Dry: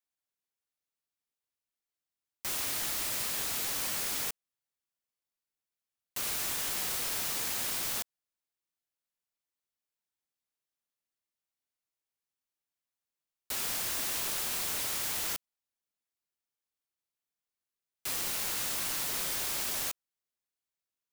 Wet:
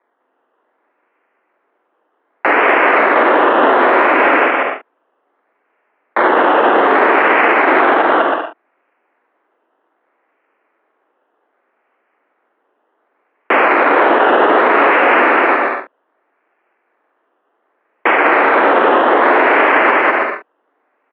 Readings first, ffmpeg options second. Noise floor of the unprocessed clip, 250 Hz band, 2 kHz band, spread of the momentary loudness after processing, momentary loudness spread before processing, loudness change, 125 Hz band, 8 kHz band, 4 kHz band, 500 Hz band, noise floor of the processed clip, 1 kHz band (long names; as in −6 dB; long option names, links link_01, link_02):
below −85 dBFS, +32.0 dB, +29.0 dB, 8 LU, 6 LU, +20.0 dB, can't be measured, below −35 dB, +8.0 dB, +36.0 dB, −66 dBFS, +34.5 dB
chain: -filter_complex "[0:a]acrusher=samples=16:mix=1:aa=0.000001:lfo=1:lforange=9.6:lforate=0.65,acontrast=59,aeval=exprs='(mod(7.94*val(0)+1,2)-1)/7.94':channel_layout=same,asplit=2[link_01][link_02];[link_02]adelay=45,volume=-8dB[link_03];[link_01][link_03]amix=inputs=2:normalize=0,asplit=2[link_04][link_05];[link_05]aecho=0:1:200|320|392|435.2|461.1:0.631|0.398|0.251|0.158|0.1[link_06];[link_04][link_06]amix=inputs=2:normalize=0,highpass=frequency=230:width_type=q:width=0.5412,highpass=frequency=230:width_type=q:width=1.307,lowpass=frequency=2500:width_type=q:width=0.5176,lowpass=frequency=2500:width_type=q:width=0.7071,lowpass=frequency=2500:width_type=q:width=1.932,afreqshift=66,alimiter=level_in=20.5dB:limit=-1dB:release=50:level=0:latency=1,volume=-1dB"